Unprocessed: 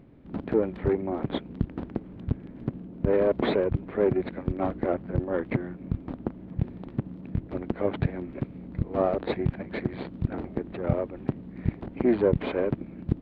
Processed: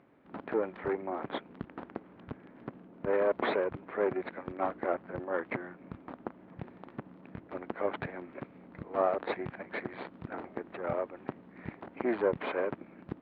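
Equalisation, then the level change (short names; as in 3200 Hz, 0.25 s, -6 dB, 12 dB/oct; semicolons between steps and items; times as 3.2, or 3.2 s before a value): band-pass 1300 Hz, Q 0.9; +2.0 dB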